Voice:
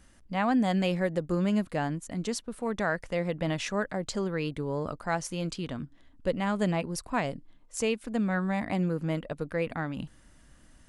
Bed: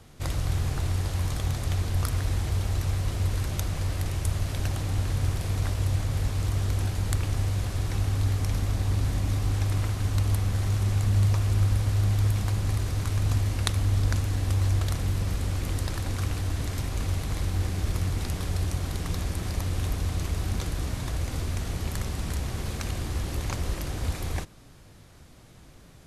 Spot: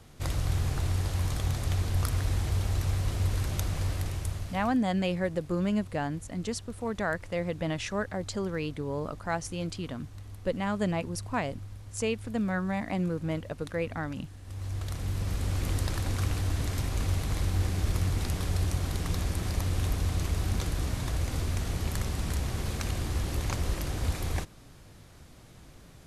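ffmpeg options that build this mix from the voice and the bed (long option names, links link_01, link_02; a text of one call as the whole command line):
ffmpeg -i stem1.wav -i stem2.wav -filter_complex "[0:a]adelay=4200,volume=-1.5dB[link_01];[1:a]volume=18dB,afade=type=out:start_time=3.86:duration=0.93:silence=0.11885,afade=type=in:start_time=14.43:duration=1.22:silence=0.105925[link_02];[link_01][link_02]amix=inputs=2:normalize=0" out.wav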